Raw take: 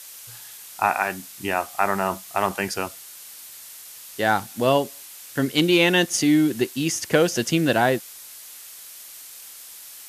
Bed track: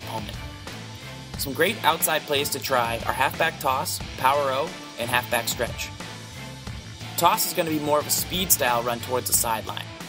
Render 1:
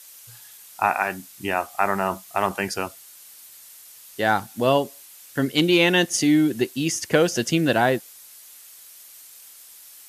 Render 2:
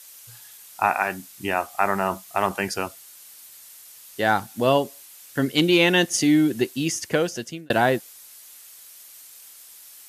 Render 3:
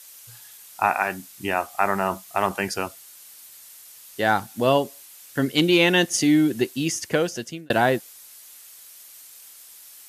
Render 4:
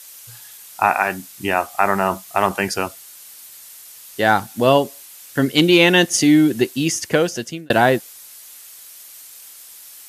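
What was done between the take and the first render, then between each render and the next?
noise reduction 6 dB, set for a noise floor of -42 dBFS
6.56–7.70 s: fade out equal-power
no audible change
trim +5 dB; peak limiter -1 dBFS, peak gain reduction 1 dB

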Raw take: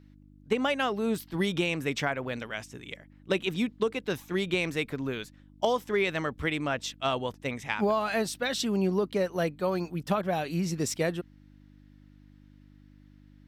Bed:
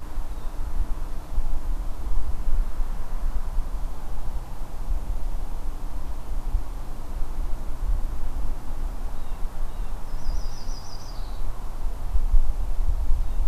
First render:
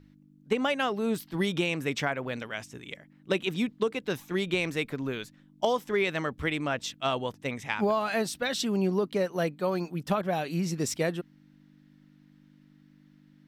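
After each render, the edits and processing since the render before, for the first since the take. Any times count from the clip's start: de-hum 50 Hz, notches 2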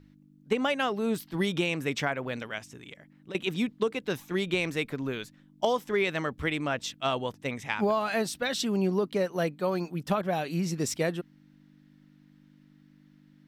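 2.58–3.35 s: compression 3:1, threshold -42 dBFS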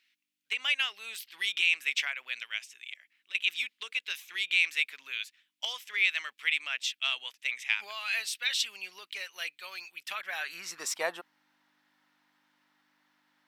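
high-pass sweep 2.5 kHz -> 880 Hz, 10.01–11.08 s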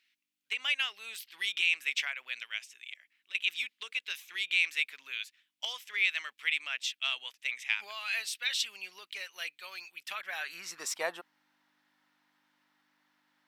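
trim -2 dB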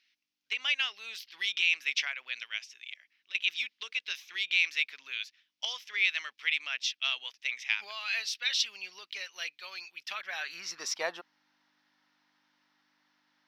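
resonant high shelf 6.8 kHz -7.5 dB, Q 3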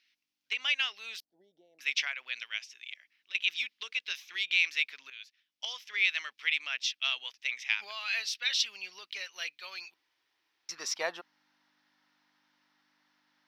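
1.20–1.79 s: elliptic low-pass 710 Hz; 5.10–6.01 s: fade in, from -13 dB; 9.94–10.69 s: room tone

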